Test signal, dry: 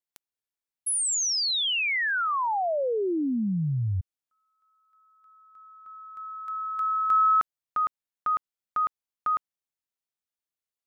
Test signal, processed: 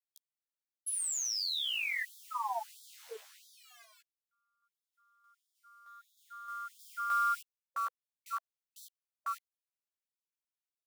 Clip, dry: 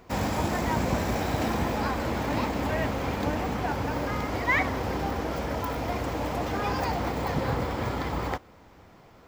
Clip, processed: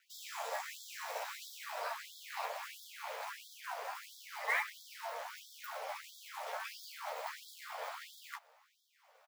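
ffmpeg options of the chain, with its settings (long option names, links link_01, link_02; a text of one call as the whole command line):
ffmpeg -i in.wav -filter_complex "[0:a]aeval=exprs='val(0)*sin(2*PI*110*n/s)':channel_layout=same,acrossover=split=170[link_01][link_02];[link_02]acrusher=bits=4:mode=log:mix=0:aa=0.000001[link_03];[link_01][link_03]amix=inputs=2:normalize=0,asplit=2[link_04][link_05];[link_05]adelay=13,volume=-3dB[link_06];[link_04][link_06]amix=inputs=2:normalize=0,afftfilt=real='re*gte(b*sr/1024,430*pow(3300/430,0.5+0.5*sin(2*PI*1.5*pts/sr)))':imag='im*gte(b*sr/1024,430*pow(3300/430,0.5+0.5*sin(2*PI*1.5*pts/sr)))':win_size=1024:overlap=0.75,volume=-7.5dB" out.wav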